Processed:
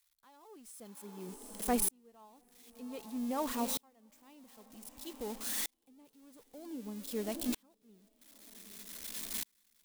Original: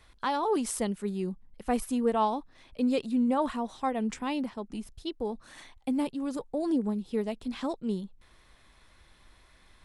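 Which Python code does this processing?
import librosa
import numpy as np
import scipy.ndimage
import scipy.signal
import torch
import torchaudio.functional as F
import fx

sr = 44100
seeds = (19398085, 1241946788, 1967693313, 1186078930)

p1 = x + 0.5 * 10.0 ** (-26.0 / 20.0) * np.diff(np.sign(x), prepend=np.sign(x[:1]))
p2 = fx.notch_comb(p1, sr, f0_hz=960.0, at=(0.72, 1.29))
p3 = p2 + fx.echo_diffused(p2, sr, ms=746, feedback_pct=42, wet_db=-13.5, dry=0)
y = fx.tremolo_decay(p3, sr, direction='swelling', hz=0.53, depth_db=39)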